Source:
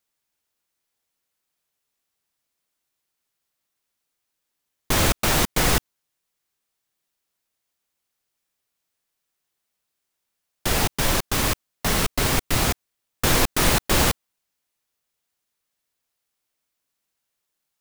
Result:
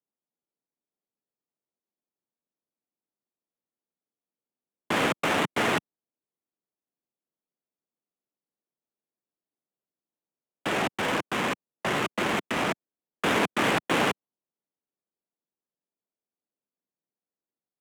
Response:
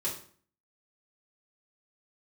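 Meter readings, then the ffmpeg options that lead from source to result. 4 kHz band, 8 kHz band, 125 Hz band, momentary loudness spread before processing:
-7.0 dB, -15.0 dB, -11.5 dB, 6 LU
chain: -af "highpass=f=230:t=q:w=0.5412,highpass=f=230:t=q:w=1.307,lowpass=f=3.4k:t=q:w=0.5176,lowpass=f=3.4k:t=q:w=0.7071,lowpass=f=3.4k:t=q:w=1.932,afreqshift=-53,adynamicsmooth=sensitivity=6:basefreq=580,volume=-1dB"

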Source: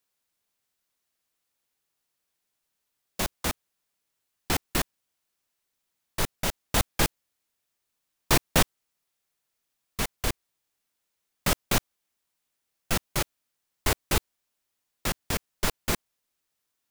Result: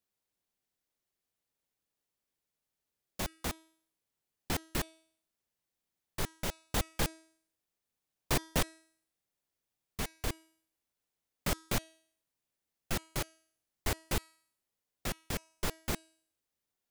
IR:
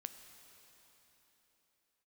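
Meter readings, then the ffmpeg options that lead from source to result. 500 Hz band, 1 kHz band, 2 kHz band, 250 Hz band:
-7.5 dB, -9.0 dB, -9.0 dB, -7.0 dB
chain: -filter_complex "[0:a]asplit=2[a][b];[b]acrusher=samples=30:mix=1:aa=0.000001,volume=-10dB[c];[a][c]amix=inputs=2:normalize=0,bandreject=f=321.8:t=h:w=4,bandreject=f=643.6:t=h:w=4,bandreject=f=965.4:t=h:w=4,bandreject=f=1.2872k:t=h:w=4,bandreject=f=1.609k:t=h:w=4,bandreject=f=1.9308k:t=h:w=4,bandreject=f=2.2526k:t=h:w=4,bandreject=f=2.5744k:t=h:w=4,bandreject=f=2.8962k:t=h:w=4,bandreject=f=3.218k:t=h:w=4,bandreject=f=3.5398k:t=h:w=4,bandreject=f=3.8616k:t=h:w=4,bandreject=f=4.1834k:t=h:w=4,bandreject=f=4.5052k:t=h:w=4,bandreject=f=4.827k:t=h:w=4,bandreject=f=5.1488k:t=h:w=4,bandreject=f=5.4706k:t=h:w=4,bandreject=f=5.7924k:t=h:w=4,bandreject=f=6.1142k:t=h:w=4,bandreject=f=6.436k:t=h:w=4,bandreject=f=6.7578k:t=h:w=4,bandreject=f=7.0796k:t=h:w=4,bandreject=f=7.4014k:t=h:w=4,bandreject=f=7.7232k:t=h:w=4,bandreject=f=8.045k:t=h:w=4,bandreject=f=8.3668k:t=h:w=4,bandreject=f=8.6886k:t=h:w=4,bandreject=f=9.0104k:t=h:w=4,bandreject=f=9.3322k:t=h:w=4,bandreject=f=9.654k:t=h:w=4,bandreject=f=9.9758k:t=h:w=4,bandreject=f=10.2976k:t=h:w=4,bandreject=f=10.6194k:t=h:w=4,bandreject=f=10.9412k:t=h:w=4,bandreject=f=11.263k:t=h:w=4,bandreject=f=11.5848k:t=h:w=4,asoftclip=type=hard:threshold=-14dB,volume=-8.5dB"

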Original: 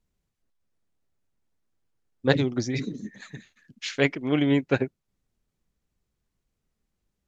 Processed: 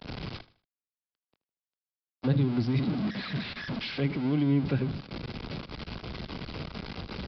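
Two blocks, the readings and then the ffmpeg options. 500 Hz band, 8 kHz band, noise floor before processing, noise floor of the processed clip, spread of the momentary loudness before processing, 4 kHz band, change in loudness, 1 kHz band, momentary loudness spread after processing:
-8.5 dB, n/a, -81 dBFS, under -85 dBFS, 17 LU, -2.0 dB, -5.5 dB, -3.0 dB, 13 LU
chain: -filter_complex "[0:a]aeval=exprs='val(0)+0.5*0.0841*sgn(val(0))':c=same,highpass=f=160:p=1,bandreject=f=1.8k:w=9.6,agate=range=-33dB:threshold=-26dB:ratio=3:detection=peak,acrossover=split=210[a][b];[b]acompressor=threshold=-39dB:ratio=6[c];[a][c]amix=inputs=2:normalize=0,aresample=11025,aresample=44100,aecho=1:1:78|156|234:0.133|0.0453|0.0154,volume=3.5dB"

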